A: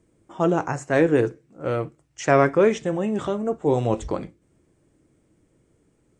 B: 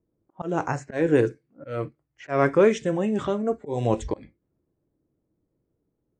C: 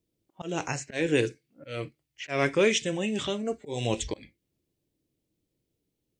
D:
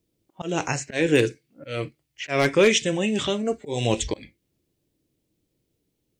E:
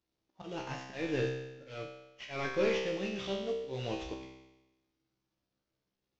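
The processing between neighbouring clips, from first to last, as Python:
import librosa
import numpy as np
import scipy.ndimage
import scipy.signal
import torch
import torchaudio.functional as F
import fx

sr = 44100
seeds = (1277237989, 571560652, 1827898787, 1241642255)

y1 = fx.env_lowpass(x, sr, base_hz=980.0, full_db=-18.5)
y1 = fx.auto_swell(y1, sr, attack_ms=200.0)
y1 = fx.noise_reduce_blind(y1, sr, reduce_db=12)
y2 = fx.high_shelf_res(y1, sr, hz=1900.0, db=13.0, q=1.5)
y2 = y2 * librosa.db_to_amplitude(-5.0)
y3 = 10.0 ** (-13.5 / 20.0) * (np.abs((y2 / 10.0 ** (-13.5 / 20.0) + 3.0) % 4.0 - 2.0) - 1.0)
y3 = y3 * librosa.db_to_amplitude(5.5)
y4 = fx.cvsd(y3, sr, bps=32000)
y4 = fx.comb_fb(y4, sr, f0_hz=65.0, decay_s=1.0, harmonics='all', damping=0.0, mix_pct=90)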